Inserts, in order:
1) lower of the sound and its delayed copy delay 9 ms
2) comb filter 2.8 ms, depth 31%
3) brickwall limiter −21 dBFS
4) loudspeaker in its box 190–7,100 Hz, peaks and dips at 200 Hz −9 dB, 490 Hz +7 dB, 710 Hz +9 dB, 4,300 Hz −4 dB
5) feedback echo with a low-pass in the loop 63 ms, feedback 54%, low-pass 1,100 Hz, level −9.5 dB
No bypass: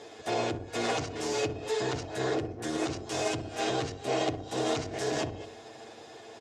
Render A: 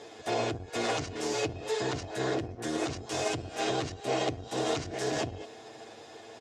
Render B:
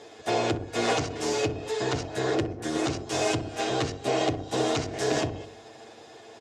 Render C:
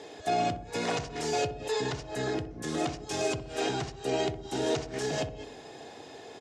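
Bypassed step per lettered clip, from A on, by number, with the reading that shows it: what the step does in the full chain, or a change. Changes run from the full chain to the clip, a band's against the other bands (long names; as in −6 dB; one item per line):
5, echo-to-direct ratio −13.0 dB to none audible
3, average gain reduction 3.0 dB
1, 1 kHz band +1.5 dB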